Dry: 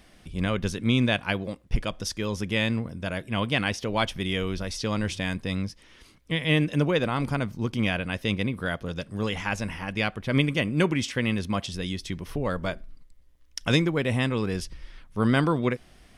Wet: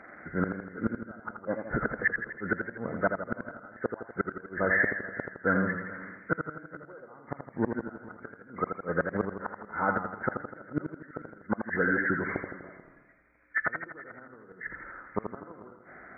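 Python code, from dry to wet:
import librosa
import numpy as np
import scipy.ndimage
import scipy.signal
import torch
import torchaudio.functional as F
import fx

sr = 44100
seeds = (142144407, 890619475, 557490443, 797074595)

y = fx.freq_compress(x, sr, knee_hz=1200.0, ratio=4.0)
y = scipy.signal.sosfilt(scipy.signal.butter(2, 530.0, 'highpass', fs=sr, output='sos'), y)
y = fx.tilt_eq(y, sr, slope=-4.0)
y = fx.gate_flip(y, sr, shuts_db=-22.0, range_db=-32)
y = y + 10.0 ** (-19.5 / 20.0) * np.pad(y, (int(437 * sr / 1000.0), 0))[:len(y)]
y = fx.echo_warbled(y, sr, ms=82, feedback_pct=57, rate_hz=2.8, cents=70, wet_db=-6.5)
y = y * librosa.db_to_amplitude(8.0)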